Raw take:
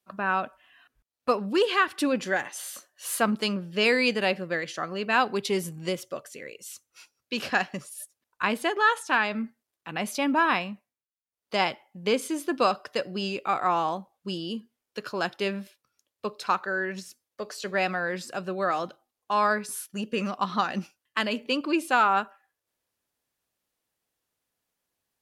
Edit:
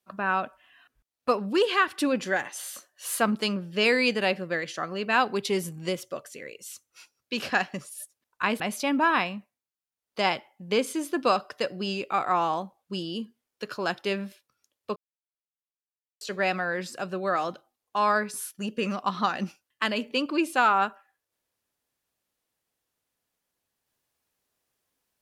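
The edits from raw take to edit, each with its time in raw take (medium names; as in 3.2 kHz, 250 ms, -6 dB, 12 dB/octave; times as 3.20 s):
8.60–9.95 s: delete
16.31–17.56 s: mute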